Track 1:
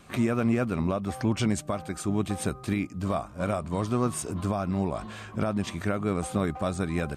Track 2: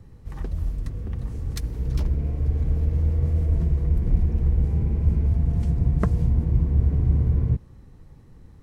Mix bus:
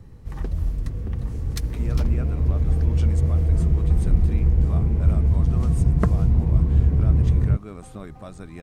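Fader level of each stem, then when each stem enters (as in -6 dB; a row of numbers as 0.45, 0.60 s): -11.0, +2.5 dB; 1.60, 0.00 s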